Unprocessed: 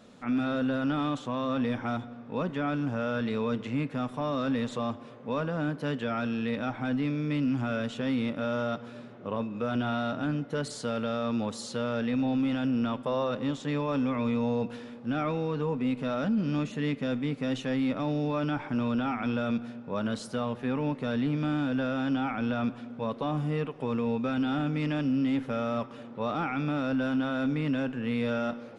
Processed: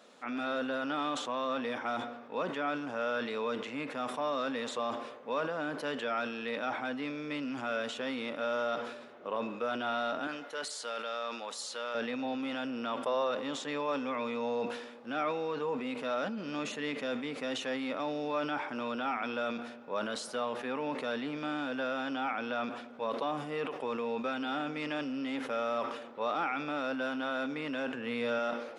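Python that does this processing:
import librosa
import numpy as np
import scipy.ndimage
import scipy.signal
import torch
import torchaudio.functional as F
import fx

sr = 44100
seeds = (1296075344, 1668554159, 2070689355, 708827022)

y = fx.highpass(x, sr, hz=900.0, slope=6, at=(10.27, 11.95))
y = fx.low_shelf(y, sr, hz=170.0, db=9.5, at=(27.94, 28.39))
y = scipy.signal.sosfilt(scipy.signal.butter(2, 450.0, 'highpass', fs=sr, output='sos'), y)
y = fx.sustainer(y, sr, db_per_s=59.0)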